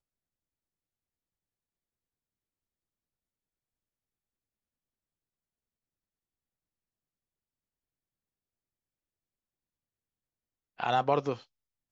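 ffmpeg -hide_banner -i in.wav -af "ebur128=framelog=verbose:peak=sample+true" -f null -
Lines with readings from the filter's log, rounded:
Integrated loudness:
  I:         -30.0 LUFS
  Threshold: -41.3 LUFS
Loudness range:
  LRA:         9.4 LU
  Threshold: -56.6 LUFS
  LRA low:   -45.1 LUFS
  LRA high:  -35.7 LUFS
Sample peak:
  Peak:      -13.9 dBFS
True peak:
  Peak:      -13.9 dBFS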